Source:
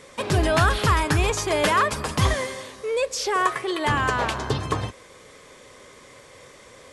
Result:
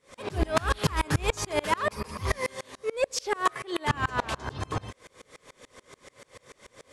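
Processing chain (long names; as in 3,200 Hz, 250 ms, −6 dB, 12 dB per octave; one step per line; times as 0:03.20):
0:01.91–0:02.48: EQ curve with evenly spaced ripples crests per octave 0.86, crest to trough 7 dB
soft clipping −15 dBFS, distortion −16 dB
tremolo with a ramp in dB swelling 6.9 Hz, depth 30 dB
level +3.5 dB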